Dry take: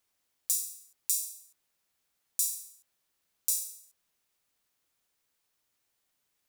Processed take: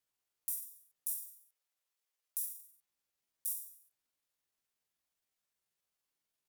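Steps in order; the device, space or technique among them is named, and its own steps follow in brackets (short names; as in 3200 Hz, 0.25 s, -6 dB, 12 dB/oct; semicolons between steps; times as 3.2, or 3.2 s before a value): 1.4–2.48 Chebyshev high-pass 310 Hz, order 3; chipmunk voice (pitch shift +6.5 st); gain -7.5 dB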